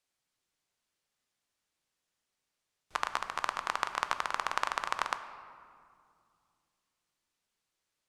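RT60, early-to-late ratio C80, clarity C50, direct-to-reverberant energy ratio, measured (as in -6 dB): 2.3 s, 11.5 dB, 11.0 dB, 9.0 dB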